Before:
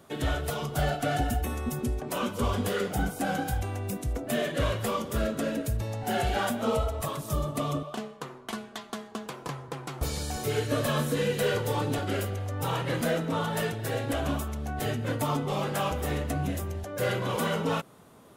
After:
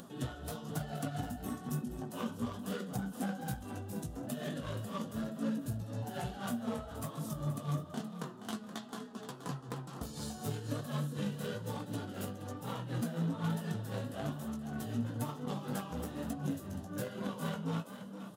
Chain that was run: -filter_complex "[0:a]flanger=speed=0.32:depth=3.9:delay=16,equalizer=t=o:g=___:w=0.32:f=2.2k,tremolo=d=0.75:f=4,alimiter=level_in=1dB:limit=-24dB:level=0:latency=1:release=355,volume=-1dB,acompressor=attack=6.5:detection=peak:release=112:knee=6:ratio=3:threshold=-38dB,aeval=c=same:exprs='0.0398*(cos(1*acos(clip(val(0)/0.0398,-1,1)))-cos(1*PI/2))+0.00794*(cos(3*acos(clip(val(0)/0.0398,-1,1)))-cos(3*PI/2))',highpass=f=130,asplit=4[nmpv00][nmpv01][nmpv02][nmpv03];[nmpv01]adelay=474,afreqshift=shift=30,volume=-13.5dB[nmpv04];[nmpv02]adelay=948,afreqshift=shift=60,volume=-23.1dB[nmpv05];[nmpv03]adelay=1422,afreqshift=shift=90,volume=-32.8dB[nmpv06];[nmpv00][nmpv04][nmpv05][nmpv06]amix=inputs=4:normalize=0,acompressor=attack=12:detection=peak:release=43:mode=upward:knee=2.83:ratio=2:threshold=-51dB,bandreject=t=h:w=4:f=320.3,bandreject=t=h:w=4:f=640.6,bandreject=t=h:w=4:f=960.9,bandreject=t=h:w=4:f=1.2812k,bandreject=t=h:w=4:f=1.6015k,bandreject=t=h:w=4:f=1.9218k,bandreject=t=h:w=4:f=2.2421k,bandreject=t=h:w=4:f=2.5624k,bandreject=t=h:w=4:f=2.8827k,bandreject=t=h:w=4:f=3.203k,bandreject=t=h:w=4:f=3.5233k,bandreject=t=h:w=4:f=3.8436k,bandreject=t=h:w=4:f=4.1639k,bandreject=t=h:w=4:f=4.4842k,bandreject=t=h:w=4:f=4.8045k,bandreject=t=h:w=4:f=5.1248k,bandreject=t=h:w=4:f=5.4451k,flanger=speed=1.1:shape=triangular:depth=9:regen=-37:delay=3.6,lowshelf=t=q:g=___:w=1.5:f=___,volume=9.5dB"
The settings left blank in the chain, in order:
-14.5, 6.5, 300